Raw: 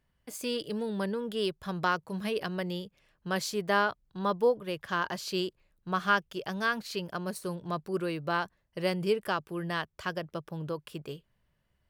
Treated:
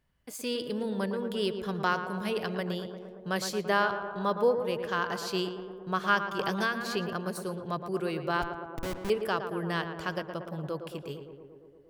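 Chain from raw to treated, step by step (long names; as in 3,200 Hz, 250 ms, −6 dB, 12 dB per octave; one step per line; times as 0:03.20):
0:08.42–0:09.10: comparator with hysteresis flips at −28.5 dBFS
tape delay 114 ms, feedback 83%, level −7 dB, low-pass 1,600 Hz
0:06.39–0:07.13: multiband upward and downward compressor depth 100%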